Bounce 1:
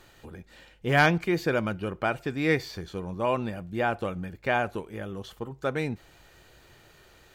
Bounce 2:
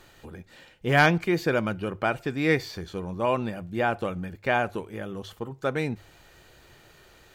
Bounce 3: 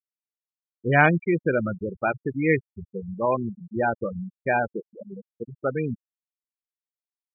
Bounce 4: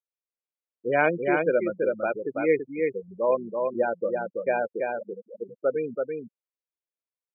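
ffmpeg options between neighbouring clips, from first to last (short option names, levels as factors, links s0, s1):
-af "bandreject=f=50:t=h:w=6,bandreject=f=100:t=h:w=6,volume=1.19"
-af "afftfilt=real='re*gte(hypot(re,im),0.126)':imag='im*gte(hypot(re,im),0.126)':win_size=1024:overlap=0.75,volume=1.26"
-af "highpass=370,equalizer=f=520:t=q:w=4:g=6,equalizer=f=800:t=q:w=4:g=-7,equalizer=f=1200:t=q:w=4:g=-7,equalizer=f=1800:t=q:w=4:g=-10,lowpass=f=2400:w=0.5412,lowpass=f=2400:w=1.3066,aecho=1:1:332:0.631"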